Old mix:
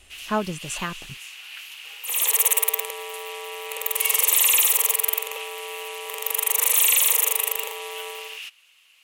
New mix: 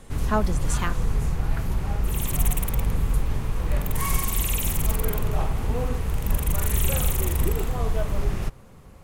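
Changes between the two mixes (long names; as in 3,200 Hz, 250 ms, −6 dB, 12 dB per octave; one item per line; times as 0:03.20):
first sound: remove high-pass with resonance 2,800 Hz, resonance Q 6.2
second sound −11.5 dB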